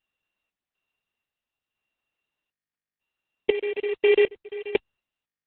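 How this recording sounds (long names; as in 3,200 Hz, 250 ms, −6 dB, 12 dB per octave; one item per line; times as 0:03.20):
a buzz of ramps at a fixed pitch in blocks of 16 samples
sample-and-hold tremolo 4 Hz, depth 95%
Opus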